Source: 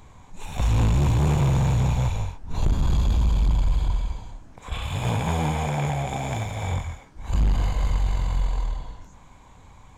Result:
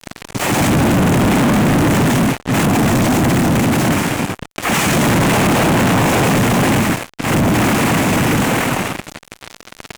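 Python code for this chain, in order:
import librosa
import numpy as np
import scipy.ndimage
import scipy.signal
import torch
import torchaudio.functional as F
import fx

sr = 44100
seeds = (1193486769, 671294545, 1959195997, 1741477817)

y = fx.noise_vocoder(x, sr, seeds[0], bands=4)
y = fx.fuzz(y, sr, gain_db=48.0, gate_db=-46.0)
y = fx.dynamic_eq(y, sr, hz=4700.0, q=1.1, threshold_db=-35.0, ratio=4.0, max_db=-7)
y = y * librosa.db_to_amplitude(1.5)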